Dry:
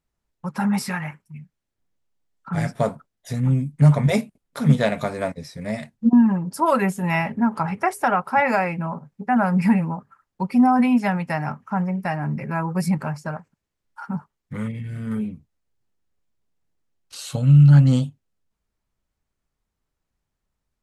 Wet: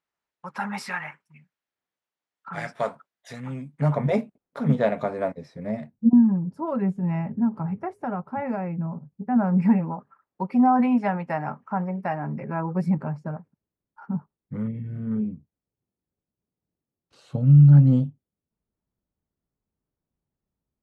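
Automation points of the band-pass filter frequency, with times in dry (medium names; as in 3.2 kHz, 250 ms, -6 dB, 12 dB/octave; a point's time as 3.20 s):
band-pass filter, Q 0.56
3.49 s 1.6 kHz
4.06 s 510 Hz
5.47 s 510 Hz
6.27 s 120 Hz
9.10 s 120 Hz
9.94 s 550 Hz
12.22 s 550 Hz
13.32 s 220 Hz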